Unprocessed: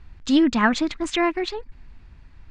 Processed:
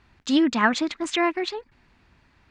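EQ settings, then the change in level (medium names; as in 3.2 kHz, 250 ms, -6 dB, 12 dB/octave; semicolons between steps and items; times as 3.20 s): high-pass 110 Hz 6 dB/octave; bass shelf 150 Hz -9.5 dB; 0.0 dB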